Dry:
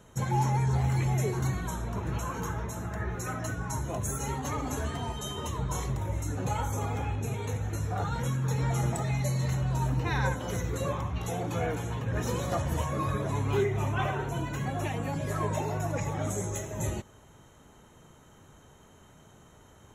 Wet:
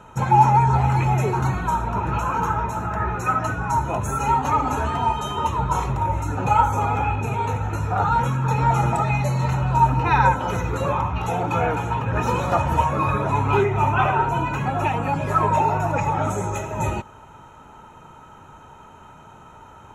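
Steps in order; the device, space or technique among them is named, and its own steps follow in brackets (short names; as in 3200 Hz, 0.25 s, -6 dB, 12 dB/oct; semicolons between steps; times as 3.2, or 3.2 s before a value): inside a helmet (high shelf 4100 Hz -9 dB; small resonant body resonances 920/1300/2500 Hz, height 15 dB, ringing for 25 ms); gain +6.5 dB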